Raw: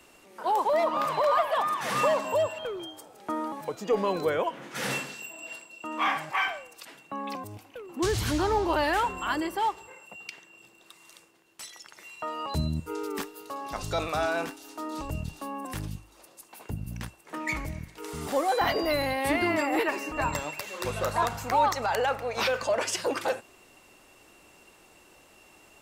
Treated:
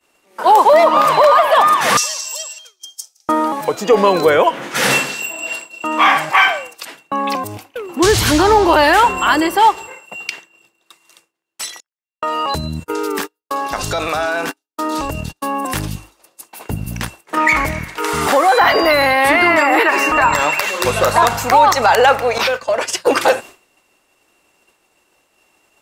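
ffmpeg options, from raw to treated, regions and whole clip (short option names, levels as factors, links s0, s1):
-filter_complex "[0:a]asettb=1/sr,asplit=3[s0][s1][s2];[s0]atrim=end=1.974[s3];[s1]atrim=start=1.97:end=3.29,asetpts=PTS-STARTPTS,afade=t=in:d=0.004:c=qsin,afade=t=out:st=1.316:d=0.004:c=qsin,bandpass=f=5700:t=q:w=5.1,aemphasis=mode=production:type=75fm,acontrast=23[s4];[s2]atrim=start=3.286[s5];[s3][s4]acrossfade=d=0.004:c1=hsin:c2=qsin[s6];[s6][s5]acrossfade=d=0.004:c1=qsin:c2=hsin,asettb=1/sr,asplit=3[s7][s8][s9];[s7]atrim=end=11.804[s10];[s8]atrim=start=11.8:end=15.54,asetpts=PTS-STARTPTS,afade=t=in:d=0.004:c=qsin,afade=t=out:st=3.736:d=0.004:c=qsin,agate=range=0.0158:threshold=0.0112:ratio=16:release=100:detection=peak,equalizer=f=1600:t=o:w=0.21:g=4.5,acompressor=threshold=0.0282:ratio=6:attack=3.2:release=140:knee=1:detection=peak[s11];[s9]atrim=start=15.536[s12];[s10][s11]acrossfade=d=0.004:c1=hsin:c2=qsin[s13];[s13][s12]acrossfade=d=0.004:c1=qsin:c2=hsin,asettb=1/sr,asplit=3[s14][s15][s16];[s14]atrim=end=17.374[s17];[s15]atrim=start=17.37:end=20.71,asetpts=PTS-STARTPTS,afade=t=in:d=0.004:c=qsin,afade=t=out:st=3.336:d=0.004:c=qsin,equalizer=f=1400:w=0.65:g=8.5,acompressor=threshold=0.0501:ratio=3:attack=3.2:release=140:knee=1:detection=peak[s18];[s16]atrim=start=20.706[s19];[s17][s18]acrossfade=d=0.004:c1=hsin:c2=qsin[s20];[s20][s19]acrossfade=d=0.004:c1=qsin:c2=hsin,asettb=1/sr,asplit=3[s21][s22][s23];[s21]atrim=end=22.384[s24];[s22]atrim=start=22.38:end=23.07,asetpts=PTS-STARTPTS,afade=t=in:d=0.004:c=qsin,afade=t=out:st=0.686:d=0.004:c=qsin,agate=range=0.0224:threshold=0.0562:ratio=3:release=100:detection=peak,acompressor=threshold=0.0282:ratio=2.5:attack=3.2:release=140:knee=1:detection=peak[s25];[s23]atrim=start=23.066[s26];[s24][s25]acrossfade=d=0.004:c1=hsin:c2=qsin[s27];[s27][s26]acrossfade=d=0.004:c1=qsin:c2=hsin,agate=range=0.0224:threshold=0.00708:ratio=3:detection=peak,lowshelf=f=260:g=-7,alimiter=level_in=7.94:limit=0.891:release=50:level=0:latency=1,volume=0.891"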